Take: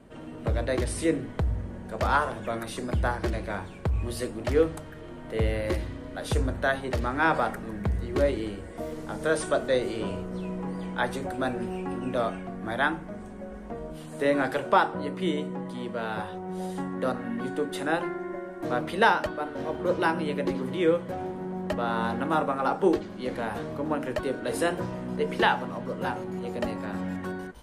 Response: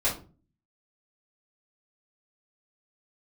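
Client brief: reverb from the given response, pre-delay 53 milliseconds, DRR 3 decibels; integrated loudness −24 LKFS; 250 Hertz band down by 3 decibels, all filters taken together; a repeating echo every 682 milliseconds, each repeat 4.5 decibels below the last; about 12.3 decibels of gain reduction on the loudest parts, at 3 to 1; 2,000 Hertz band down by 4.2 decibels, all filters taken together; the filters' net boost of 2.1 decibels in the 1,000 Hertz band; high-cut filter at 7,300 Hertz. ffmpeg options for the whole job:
-filter_complex "[0:a]lowpass=7300,equalizer=frequency=250:width_type=o:gain=-4.5,equalizer=frequency=1000:width_type=o:gain=5,equalizer=frequency=2000:width_type=o:gain=-9,acompressor=threshold=-32dB:ratio=3,aecho=1:1:682|1364|2046|2728|3410|4092|4774|5456|6138:0.596|0.357|0.214|0.129|0.0772|0.0463|0.0278|0.0167|0.01,asplit=2[link_01][link_02];[1:a]atrim=start_sample=2205,adelay=53[link_03];[link_02][link_03]afir=irnorm=-1:irlink=0,volume=-13dB[link_04];[link_01][link_04]amix=inputs=2:normalize=0,volume=7.5dB"

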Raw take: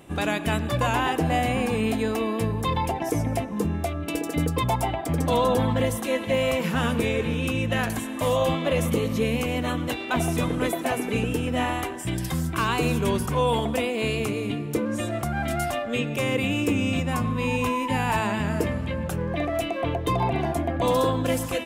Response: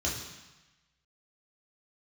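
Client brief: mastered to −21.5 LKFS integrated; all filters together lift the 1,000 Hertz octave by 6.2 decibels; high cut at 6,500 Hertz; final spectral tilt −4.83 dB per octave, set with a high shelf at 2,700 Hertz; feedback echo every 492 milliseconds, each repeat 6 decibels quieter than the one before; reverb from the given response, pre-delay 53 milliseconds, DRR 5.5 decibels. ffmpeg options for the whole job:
-filter_complex "[0:a]lowpass=6500,equalizer=frequency=1000:width_type=o:gain=6.5,highshelf=frequency=2700:gain=7.5,aecho=1:1:492|984|1476|1968|2460|2952:0.501|0.251|0.125|0.0626|0.0313|0.0157,asplit=2[link_01][link_02];[1:a]atrim=start_sample=2205,adelay=53[link_03];[link_02][link_03]afir=irnorm=-1:irlink=0,volume=-12dB[link_04];[link_01][link_04]amix=inputs=2:normalize=0,volume=-2.5dB"

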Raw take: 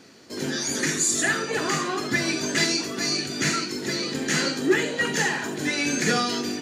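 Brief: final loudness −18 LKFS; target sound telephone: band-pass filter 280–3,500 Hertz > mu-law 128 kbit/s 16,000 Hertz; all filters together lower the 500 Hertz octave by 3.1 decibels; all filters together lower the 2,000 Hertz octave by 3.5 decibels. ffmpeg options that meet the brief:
ffmpeg -i in.wav -af "highpass=280,lowpass=3500,equalizer=frequency=500:width_type=o:gain=-3,equalizer=frequency=2000:width_type=o:gain=-3.5,volume=11dB" -ar 16000 -c:a pcm_mulaw out.wav

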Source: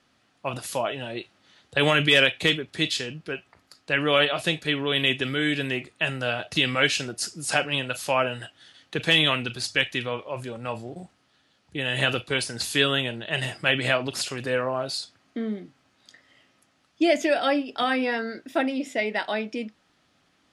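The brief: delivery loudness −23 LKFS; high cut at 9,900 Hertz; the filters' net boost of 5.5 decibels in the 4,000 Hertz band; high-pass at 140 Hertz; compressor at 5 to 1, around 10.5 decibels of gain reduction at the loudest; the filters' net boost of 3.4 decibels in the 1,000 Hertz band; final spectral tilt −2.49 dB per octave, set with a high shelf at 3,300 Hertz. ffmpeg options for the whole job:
ffmpeg -i in.wav -af "highpass=140,lowpass=9900,equalizer=frequency=1000:width_type=o:gain=4,highshelf=frequency=3300:gain=4,equalizer=frequency=4000:width_type=o:gain=4.5,acompressor=threshold=-23dB:ratio=5,volume=4.5dB" out.wav

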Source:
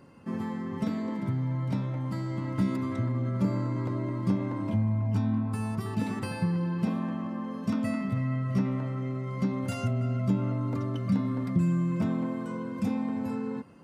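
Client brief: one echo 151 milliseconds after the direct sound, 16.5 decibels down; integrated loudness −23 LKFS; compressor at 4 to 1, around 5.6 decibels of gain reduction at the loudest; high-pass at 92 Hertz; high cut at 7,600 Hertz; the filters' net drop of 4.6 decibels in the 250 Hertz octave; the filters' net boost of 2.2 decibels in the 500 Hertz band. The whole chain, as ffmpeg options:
ffmpeg -i in.wav -af "highpass=92,lowpass=7600,equalizer=frequency=250:width_type=o:gain=-7,equalizer=frequency=500:width_type=o:gain=5,acompressor=threshold=-31dB:ratio=4,aecho=1:1:151:0.15,volume=13dB" out.wav

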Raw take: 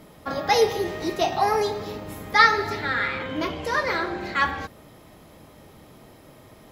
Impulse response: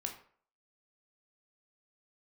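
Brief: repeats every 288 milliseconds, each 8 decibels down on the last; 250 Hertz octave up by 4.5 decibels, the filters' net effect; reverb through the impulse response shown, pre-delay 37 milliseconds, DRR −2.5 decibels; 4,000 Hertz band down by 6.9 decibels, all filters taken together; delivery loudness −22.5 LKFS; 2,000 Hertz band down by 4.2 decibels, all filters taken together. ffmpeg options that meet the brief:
-filter_complex "[0:a]equalizer=frequency=250:width_type=o:gain=6.5,equalizer=frequency=2000:width_type=o:gain=-3.5,equalizer=frequency=4000:width_type=o:gain=-7.5,aecho=1:1:288|576|864|1152|1440:0.398|0.159|0.0637|0.0255|0.0102,asplit=2[link_01][link_02];[1:a]atrim=start_sample=2205,adelay=37[link_03];[link_02][link_03]afir=irnorm=-1:irlink=0,volume=3dB[link_04];[link_01][link_04]amix=inputs=2:normalize=0,volume=-3.5dB"

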